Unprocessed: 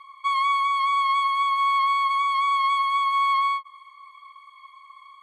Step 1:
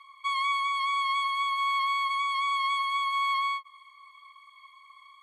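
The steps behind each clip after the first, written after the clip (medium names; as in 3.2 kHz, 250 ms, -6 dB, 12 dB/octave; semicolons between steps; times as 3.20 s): Bessel high-pass 1.7 kHz, order 2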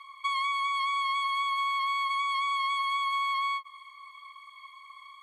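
compression, threshold -31 dBFS, peak gain reduction 7 dB; trim +4 dB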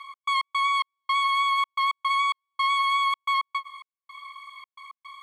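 trance gate "x.x.xx..xxx" 110 bpm -60 dB; trim +6 dB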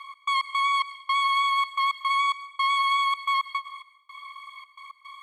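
plate-style reverb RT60 0.66 s, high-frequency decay 1×, pre-delay 90 ms, DRR 13 dB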